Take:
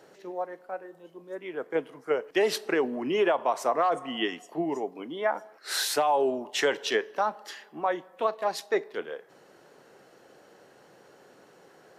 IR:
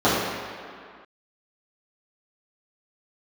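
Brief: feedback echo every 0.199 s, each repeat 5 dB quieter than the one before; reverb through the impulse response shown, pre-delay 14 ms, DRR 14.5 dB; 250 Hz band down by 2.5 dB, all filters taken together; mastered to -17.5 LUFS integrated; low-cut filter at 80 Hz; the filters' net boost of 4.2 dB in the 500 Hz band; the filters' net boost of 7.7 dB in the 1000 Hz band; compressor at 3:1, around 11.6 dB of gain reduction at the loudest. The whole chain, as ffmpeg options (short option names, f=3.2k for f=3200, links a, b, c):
-filter_complex "[0:a]highpass=80,equalizer=f=250:t=o:g=-8.5,equalizer=f=500:t=o:g=5,equalizer=f=1k:t=o:g=9,acompressor=threshold=-30dB:ratio=3,aecho=1:1:199|398|597|796|995|1194|1393:0.562|0.315|0.176|0.0988|0.0553|0.031|0.0173,asplit=2[a][b];[1:a]atrim=start_sample=2205,adelay=14[c];[b][c]afir=irnorm=-1:irlink=0,volume=-37.5dB[d];[a][d]amix=inputs=2:normalize=0,volume=14dB"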